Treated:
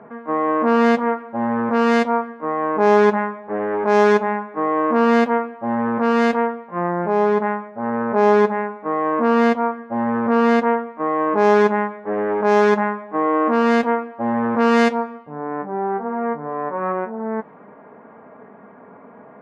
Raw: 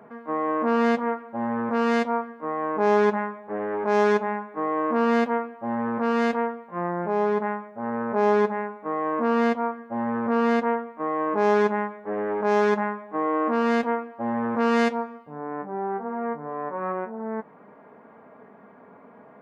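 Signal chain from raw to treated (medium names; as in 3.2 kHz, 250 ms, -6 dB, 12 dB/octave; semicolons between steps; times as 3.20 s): level-controlled noise filter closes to 2.3 kHz; trim +6 dB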